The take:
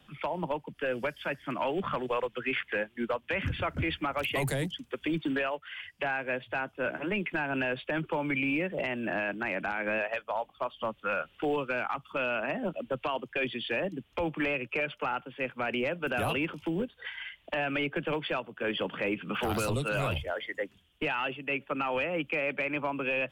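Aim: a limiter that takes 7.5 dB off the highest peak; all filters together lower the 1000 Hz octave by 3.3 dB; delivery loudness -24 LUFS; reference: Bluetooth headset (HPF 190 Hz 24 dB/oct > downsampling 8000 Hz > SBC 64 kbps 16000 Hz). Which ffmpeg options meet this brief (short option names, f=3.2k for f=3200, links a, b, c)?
-af "equalizer=f=1k:t=o:g=-4.5,alimiter=level_in=5.5dB:limit=-24dB:level=0:latency=1,volume=-5.5dB,highpass=f=190:w=0.5412,highpass=f=190:w=1.3066,aresample=8000,aresample=44100,volume=14.5dB" -ar 16000 -c:a sbc -b:a 64k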